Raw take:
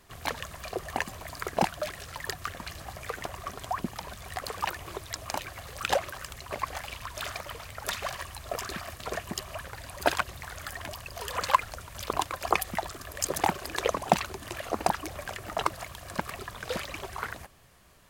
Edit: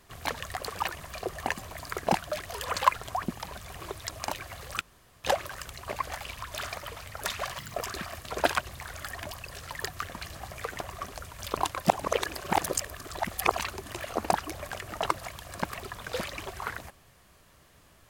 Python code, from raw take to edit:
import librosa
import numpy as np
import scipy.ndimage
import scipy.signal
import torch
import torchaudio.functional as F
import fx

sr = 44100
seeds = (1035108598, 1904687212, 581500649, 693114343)

y = fx.edit(x, sr, fx.swap(start_s=1.96, length_s=1.61, other_s=11.13, other_length_s=0.55),
    fx.move(start_s=4.32, length_s=0.5, to_s=0.5),
    fx.insert_room_tone(at_s=5.87, length_s=0.43),
    fx.speed_span(start_s=8.21, length_s=0.28, speed=1.76),
    fx.cut(start_s=9.17, length_s=0.87),
    fx.reverse_span(start_s=12.43, length_s=1.72), tone=tone)